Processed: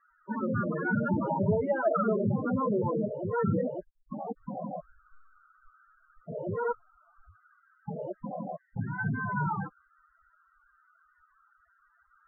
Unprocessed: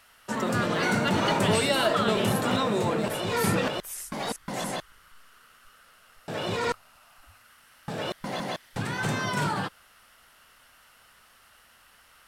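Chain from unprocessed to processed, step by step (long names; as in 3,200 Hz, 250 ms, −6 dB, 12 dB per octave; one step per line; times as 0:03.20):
spectral peaks only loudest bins 8
Butterworth low-pass 1,700 Hz 48 dB per octave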